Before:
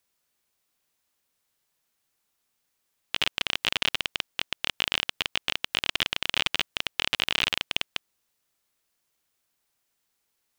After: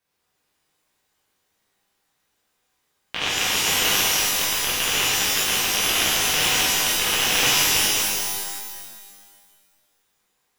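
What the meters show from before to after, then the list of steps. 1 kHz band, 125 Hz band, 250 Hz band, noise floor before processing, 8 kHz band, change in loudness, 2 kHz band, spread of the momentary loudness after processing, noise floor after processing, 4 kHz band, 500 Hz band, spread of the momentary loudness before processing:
+10.0 dB, +9.5 dB, +10.0 dB, -77 dBFS, +22.0 dB, +8.5 dB, +7.0 dB, 10 LU, -73 dBFS, +6.5 dB, +10.5 dB, 5 LU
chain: high shelf 3600 Hz -10 dB; shimmer reverb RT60 1.7 s, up +12 st, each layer -2 dB, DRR -8.5 dB

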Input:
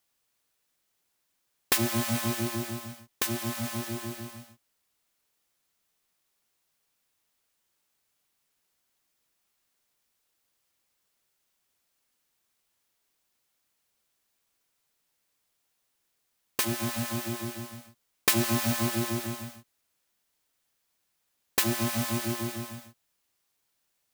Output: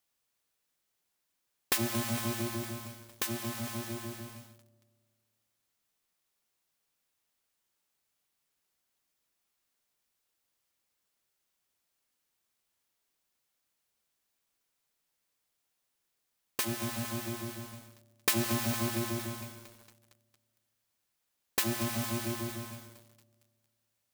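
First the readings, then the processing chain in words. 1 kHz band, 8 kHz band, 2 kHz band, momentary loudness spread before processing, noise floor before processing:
-4.0 dB, -4.5 dB, -4.5 dB, 16 LU, -77 dBFS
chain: on a send: dark delay 91 ms, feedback 71%, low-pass 790 Hz, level -17 dB; on the sum: lo-fi delay 0.229 s, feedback 80%, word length 6-bit, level -15 dB; gain -4.5 dB

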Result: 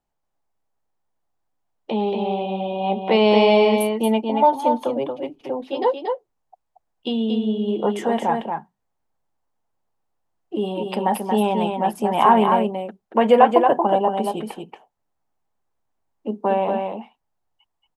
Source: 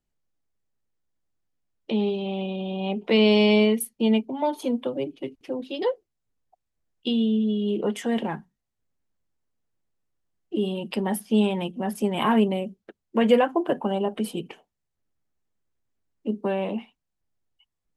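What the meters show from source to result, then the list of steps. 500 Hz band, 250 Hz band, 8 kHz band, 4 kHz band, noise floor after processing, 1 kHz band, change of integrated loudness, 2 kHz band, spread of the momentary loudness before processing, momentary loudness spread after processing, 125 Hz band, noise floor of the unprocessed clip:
+5.5 dB, +0.5 dB, 0.0 dB, +1.0 dB, -76 dBFS, +13.0 dB, +4.5 dB, +2.5 dB, 13 LU, 16 LU, +0.5 dB, -82 dBFS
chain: bell 840 Hz +14.5 dB 1.2 oct; on a send: echo 0.23 s -5 dB; on the sum: gain -1.5 dB

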